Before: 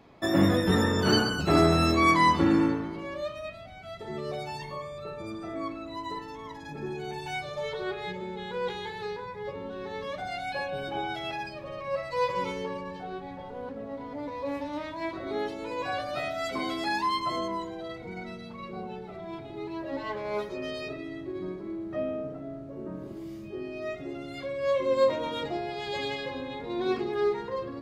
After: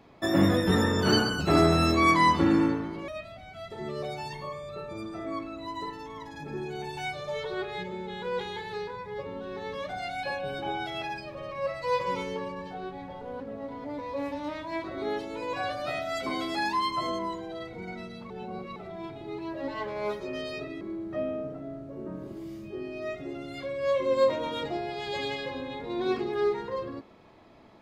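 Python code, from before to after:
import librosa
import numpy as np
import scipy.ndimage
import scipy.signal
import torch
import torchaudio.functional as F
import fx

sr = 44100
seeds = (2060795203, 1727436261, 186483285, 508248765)

y = fx.edit(x, sr, fx.cut(start_s=3.08, length_s=0.29),
    fx.reverse_span(start_s=18.59, length_s=0.46),
    fx.cut(start_s=21.1, length_s=0.51), tone=tone)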